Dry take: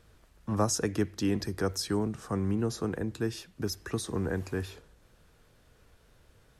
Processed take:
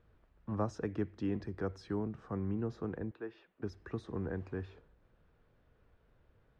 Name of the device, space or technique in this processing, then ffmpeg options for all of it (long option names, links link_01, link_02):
phone in a pocket: -filter_complex "[0:a]lowpass=3200,highshelf=frequency=2400:gain=-9,asettb=1/sr,asplit=3[link_01][link_02][link_03];[link_01]atrim=end=3.114[link_04];[link_02]atrim=start=3.11:end=3.63,asetpts=PTS-STARTPTS,afade=type=in:duration=0.004:curve=qsin,afade=type=out:start_time=0.516:duration=0.004:curve=qsin,acrossover=split=330 3900:gain=0.0891 1 0.0891[link_05][link_06][link_07];[link_05][link_06][link_07]amix=inputs=3:normalize=0[link_08];[link_03]atrim=start=3.626[link_09];[link_04][link_08]acrossfade=duration=0.004:curve1=hsin:curve2=qsin[link_10];[link_10][link_09]acrossfade=duration=0.004:curve1=qsin:curve2=hsin,volume=-6.5dB"